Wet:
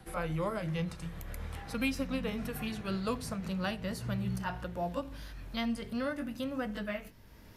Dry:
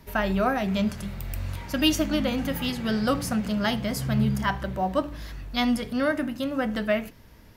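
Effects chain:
pitch glide at a constant tempo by −3.5 semitones ending unshifted
multiband upward and downward compressor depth 40%
level −8.5 dB

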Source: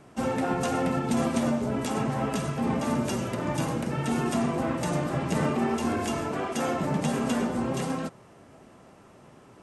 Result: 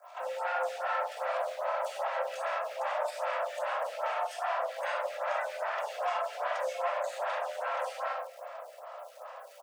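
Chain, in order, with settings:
time-frequency cells dropped at random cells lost 24%
in parallel at +1.5 dB: compressor whose output falls as the input rises −31 dBFS
on the sum: low-pass filter 1,500 Hz 6 dB per octave
hard clipping −25.5 dBFS, distortion −8 dB
surface crackle 350 per second −46 dBFS
fake sidechain pumping 116 BPM, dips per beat 1, −12 dB, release 91 ms
Butterworth high-pass 520 Hz 96 dB per octave
double-tracking delay 38 ms −11 dB
brickwall limiter −28.5 dBFS, peak gain reduction 9.5 dB
slap from a distant wall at 250 metres, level −18 dB
rectangular room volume 1,000 cubic metres, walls mixed, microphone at 2.9 metres
phaser with staggered stages 2.5 Hz

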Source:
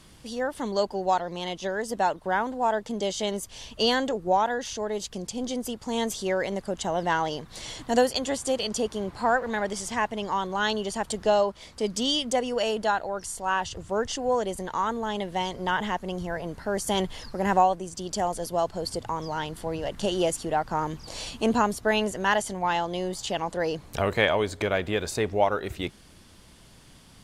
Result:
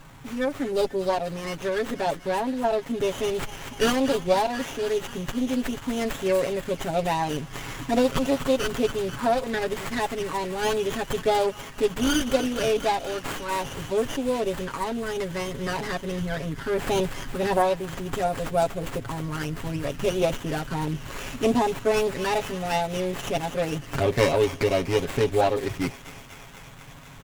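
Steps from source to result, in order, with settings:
high-shelf EQ 5,400 Hz +7.5 dB
comb filter 7.3 ms, depth 87%
in parallel at −0.5 dB: downward compressor, threshold −29 dBFS, peak gain reduction 14.5 dB
on the sum: phaser swept by the level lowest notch 420 Hz, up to 1,500 Hz, full sweep at −16 dBFS
delay with a high-pass on its return 243 ms, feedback 77%, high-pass 2,900 Hz, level −7 dB
windowed peak hold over 9 samples

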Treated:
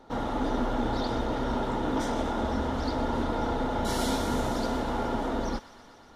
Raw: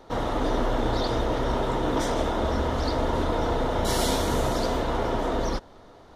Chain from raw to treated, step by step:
high-shelf EQ 12,000 Hz −3.5 dB
hollow resonant body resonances 240/840/1,400 Hz, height 8 dB
on a send: delay with a high-pass on its return 122 ms, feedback 81%, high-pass 1,400 Hz, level −15 dB
on the sum: level −5.5 dB

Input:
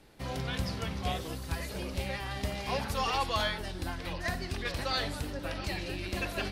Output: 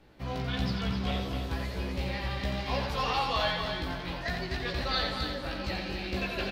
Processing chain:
parametric band 9,800 Hz −14 dB 1.4 octaves
double-tracking delay 16 ms −3 dB
on a send: echo machine with several playback heads 87 ms, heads first and third, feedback 45%, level −6.5 dB
on the sum: dynamic equaliser 4,100 Hz, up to +6 dB, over −50 dBFS, Q 1.8
level −1.5 dB

